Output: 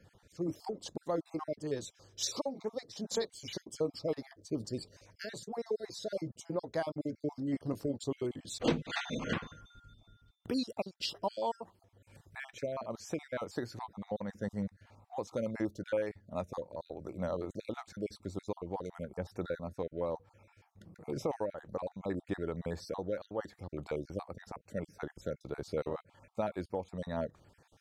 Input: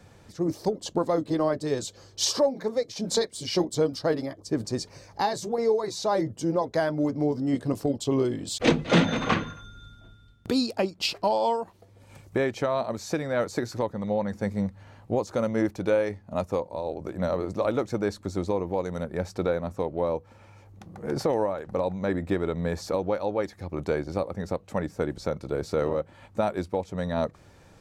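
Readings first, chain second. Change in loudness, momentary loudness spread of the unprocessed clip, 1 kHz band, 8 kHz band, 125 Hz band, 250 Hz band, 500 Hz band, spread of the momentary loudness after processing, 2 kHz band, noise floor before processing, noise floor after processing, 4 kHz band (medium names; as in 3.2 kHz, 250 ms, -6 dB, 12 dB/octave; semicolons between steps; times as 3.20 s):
-11.0 dB, 7 LU, -12.0 dB, -9.5 dB, -11.0 dB, -10.5 dB, -11.0 dB, 9 LU, -11.0 dB, -54 dBFS, -72 dBFS, -10.0 dB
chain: random holes in the spectrogram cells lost 35%; trim -8.5 dB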